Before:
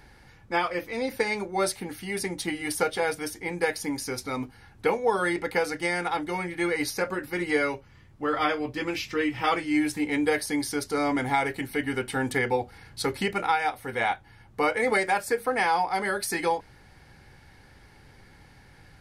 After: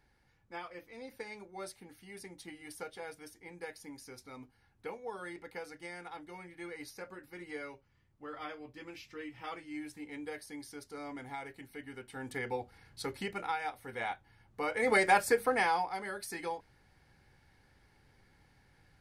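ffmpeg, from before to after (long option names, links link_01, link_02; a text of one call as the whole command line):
ffmpeg -i in.wav -af "afade=type=in:start_time=12.09:duration=0.42:silence=0.446684,afade=type=in:start_time=14.66:duration=0.49:silence=0.281838,afade=type=out:start_time=15.15:duration=0.84:silence=0.237137" out.wav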